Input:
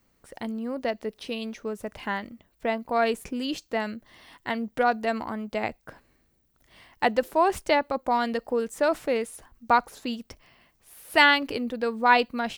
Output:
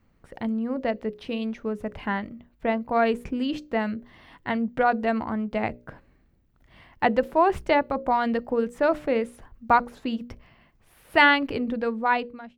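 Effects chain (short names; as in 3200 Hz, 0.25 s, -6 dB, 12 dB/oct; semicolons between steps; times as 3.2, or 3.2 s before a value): ending faded out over 0.83 s; tone controls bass +7 dB, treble -14 dB; notches 60/120/180/240/300/360/420/480/540/600 Hz; gain +1.5 dB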